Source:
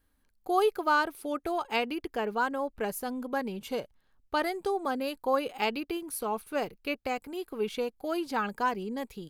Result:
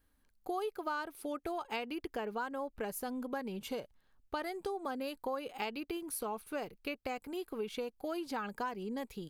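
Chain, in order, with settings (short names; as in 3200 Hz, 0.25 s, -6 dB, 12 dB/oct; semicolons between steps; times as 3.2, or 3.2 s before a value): compressor 4:1, threshold -34 dBFS, peak gain reduction 11.5 dB; gain -1.5 dB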